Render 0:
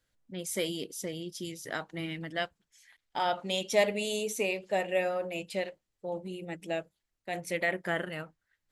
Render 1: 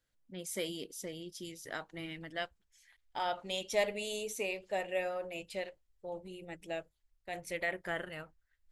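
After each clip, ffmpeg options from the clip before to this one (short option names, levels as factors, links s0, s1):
-af "asubboost=boost=10.5:cutoff=58,volume=0.562"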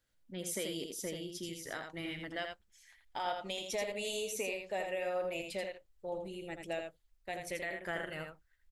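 -af "alimiter=level_in=1.88:limit=0.0631:level=0:latency=1:release=293,volume=0.531,aecho=1:1:83:0.531,volume=1.26"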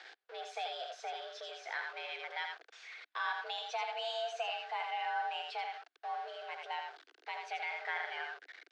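-af "aeval=exprs='val(0)+0.5*0.0075*sgn(val(0))':c=same,highpass=230,equalizer=f=320:t=q:w=4:g=-9,equalizer=f=450:t=q:w=4:g=4,equalizer=f=720:t=q:w=4:g=-5,equalizer=f=1300:t=q:w=4:g=10,lowpass=f=4300:w=0.5412,lowpass=f=4300:w=1.3066,afreqshift=250,volume=0.794"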